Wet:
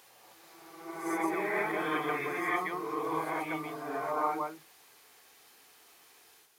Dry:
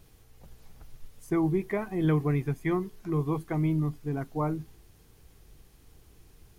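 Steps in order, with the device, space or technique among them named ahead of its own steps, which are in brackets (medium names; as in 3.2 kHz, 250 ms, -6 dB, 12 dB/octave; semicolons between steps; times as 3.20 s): ghost voice (reverse; reverberation RT60 1.3 s, pre-delay 118 ms, DRR -7.5 dB; reverse; high-pass 770 Hz 12 dB/octave)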